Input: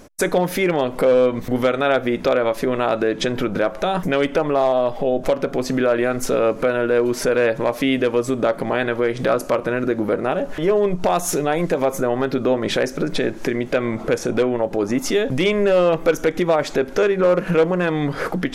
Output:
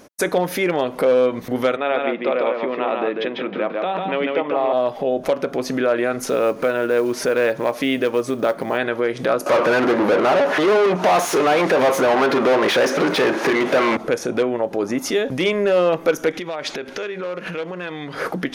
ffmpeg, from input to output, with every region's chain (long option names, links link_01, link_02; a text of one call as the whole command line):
ffmpeg -i in.wav -filter_complex "[0:a]asettb=1/sr,asplit=3[link_01][link_02][link_03];[link_01]atrim=end=1.764[link_04];[link_02]atrim=start=1.76:end=4.73,asetpts=PTS-STARTPTS,afade=type=in:duration=0.004:curve=qsin,afade=type=out:start_time=2.966:duration=0.004:curve=qsin,highpass=frequency=200:width=0.5412,highpass=frequency=200:width=1.3066,equalizer=frequency=260:width_type=q:width=4:gain=-4,equalizer=frequency=390:width_type=q:width=4:gain=-4,equalizer=frequency=620:width_type=q:width=4:gain=-3,equalizer=frequency=1500:width_type=q:width=4:gain=-7,lowpass=frequency=3100:width=0.5412,lowpass=frequency=3100:width=1.3066,aecho=1:1:146|168:0.668|0.141,atrim=end_sample=130977[link_05];[link_03]atrim=start=4.726[link_06];[link_04][link_05]acrossfade=duration=0.004:curve1=hsin:curve2=qsin[link_07];[link_07][link_06]acrossfade=duration=0.004:curve1=qsin:curve2=hsin,asettb=1/sr,asplit=3[link_08][link_09][link_10];[link_08]atrim=end=6.224[link_11];[link_09]atrim=start=6.22:end=8.78,asetpts=PTS-STARTPTS,afade=type=in:duration=0.004:curve=qsin,afade=type=out:start_time=2.556:duration=0.004:curve=qsin,lowpass=12000,acrusher=bits=8:mode=log:mix=0:aa=0.000001[link_12];[link_10]atrim=start=8.776[link_13];[link_11][link_12]acrossfade=duration=0.004:curve1=hsin:curve2=qsin[link_14];[link_14][link_13]acrossfade=duration=0.004:curve1=qsin:curve2=hsin,asettb=1/sr,asplit=3[link_15][link_16][link_17];[link_15]atrim=end=9.464[link_18];[link_16]atrim=start=9.46:end=13.97,asetpts=PTS-STARTPTS,afade=type=in:duration=0.004:curve=qsin,afade=type=out:start_time=4.506:duration=0.004:curve=qsin,asplit=2[link_19][link_20];[link_20]highpass=frequency=720:poles=1,volume=31dB,asoftclip=type=tanh:threshold=-7.5dB[link_21];[link_19][link_21]amix=inputs=2:normalize=0,lowpass=frequency=1700:poles=1,volume=-6dB,highpass=frequency=190:poles=1[link_22];[link_17]atrim=start=13.966[link_23];[link_18][link_22]acrossfade=duration=0.004:curve1=hsin:curve2=qsin[link_24];[link_24][link_23]acrossfade=duration=0.004:curve1=qsin:curve2=hsin,asettb=1/sr,asplit=3[link_25][link_26][link_27];[link_25]atrim=end=16.334[link_28];[link_26]atrim=start=16.33:end=18.15,asetpts=PTS-STARTPTS,afade=type=in:duration=0.004:curve=qsin,afade=type=out:start_time=1.816:duration=0.004:curve=qsin,lowpass=11000,acompressor=threshold=-25dB:ratio=5:attack=3.2:release=140:knee=1:detection=peak,equalizer=frequency=3100:width=0.72:gain=8[link_29];[link_27]atrim=start=18.146[link_30];[link_28][link_29]acrossfade=duration=0.004:curve1=hsin:curve2=qsin[link_31];[link_31][link_30]acrossfade=duration=0.004:curve1=qsin:curve2=hsin,highpass=frequency=210:poles=1,bandreject=frequency=7600:width=7.5" out.wav